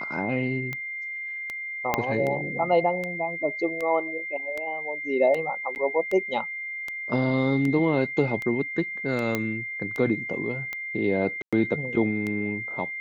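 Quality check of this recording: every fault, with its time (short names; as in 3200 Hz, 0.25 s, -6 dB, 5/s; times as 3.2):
tick 78 rpm -18 dBFS
tone 2100 Hz -31 dBFS
1.94 pop -8 dBFS
5.75–5.76 gap 9.7 ms
9.35 pop -11 dBFS
11.42–11.53 gap 0.106 s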